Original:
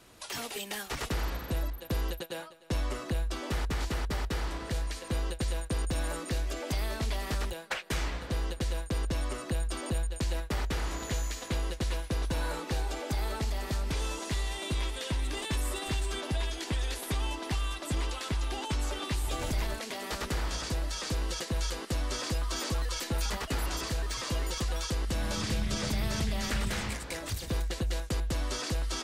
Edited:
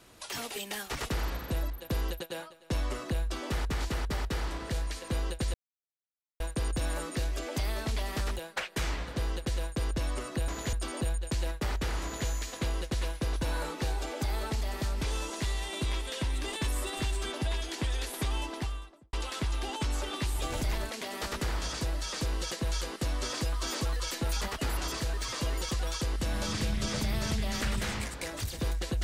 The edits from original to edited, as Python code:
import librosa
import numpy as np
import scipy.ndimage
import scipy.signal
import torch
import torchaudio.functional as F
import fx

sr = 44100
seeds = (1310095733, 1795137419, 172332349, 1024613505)

y = fx.studio_fade_out(x, sr, start_s=17.32, length_s=0.7)
y = fx.edit(y, sr, fx.insert_silence(at_s=5.54, length_s=0.86),
    fx.duplicate(start_s=10.92, length_s=0.25, to_s=9.62), tone=tone)